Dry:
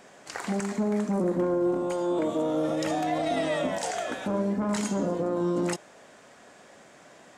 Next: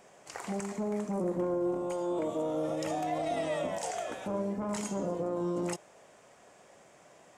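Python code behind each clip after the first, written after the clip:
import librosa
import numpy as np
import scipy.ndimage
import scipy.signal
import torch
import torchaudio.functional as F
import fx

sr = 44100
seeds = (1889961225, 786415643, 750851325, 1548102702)

y = fx.graphic_eq_15(x, sr, hz=(250, 1600, 4000), db=(-7, -6, -6))
y = y * 10.0 ** (-3.5 / 20.0)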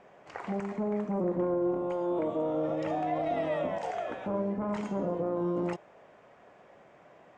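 y = scipy.signal.sosfilt(scipy.signal.butter(2, 2400.0, 'lowpass', fs=sr, output='sos'), x)
y = y * 10.0 ** (2.0 / 20.0)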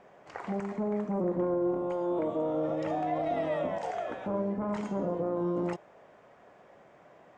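y = fx.peak_eq(x, sr, hz=2600.0, db=-2.5, octaves=0.58)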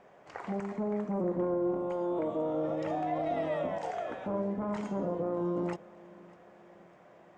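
y = fx.echo_feedback(x, sr, ms=601, feedback_pct=52, wet_db=-22.5)
y = y * 10.0 ** (-1.5 / 20.0)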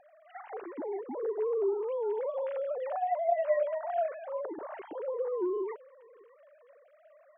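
y = fx.sine_speech(x, sr)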